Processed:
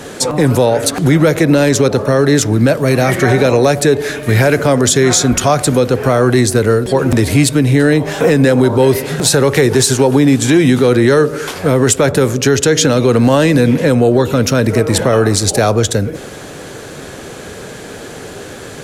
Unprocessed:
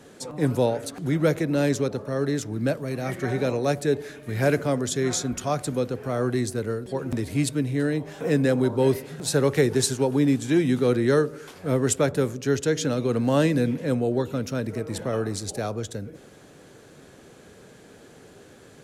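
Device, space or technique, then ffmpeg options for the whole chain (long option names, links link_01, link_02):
mastering chain: -af "equalizer=frequency=210:width_type=o:width=2.1:gain=-4,acompressor=threshold=-27dB:ratio=2.5,asoftclip=type=tanh:threshold=-16.5dB,alimiter=level_in=22.5dB:limit=-1dB:release=50:level=0:latency=1,volume=-1dB"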